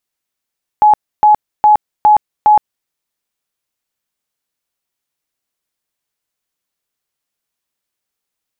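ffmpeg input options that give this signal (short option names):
-f lavfi -i "aevalsrc='0.631*sin(2*PI*845*mod(t,0.41))*lt(mod(t,0.41),99/845)':d=2.05:s=44100"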